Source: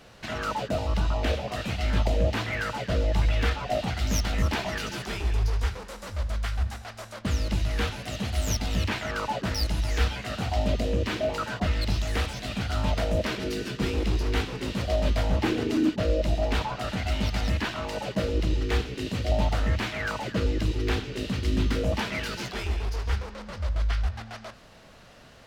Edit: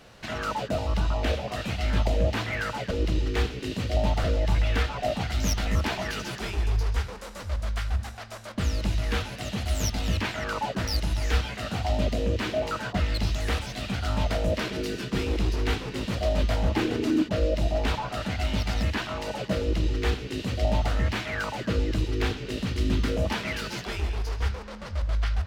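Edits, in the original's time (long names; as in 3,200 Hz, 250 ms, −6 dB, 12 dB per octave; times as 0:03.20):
0:18.26–0:19.59: duplicate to 0:02.91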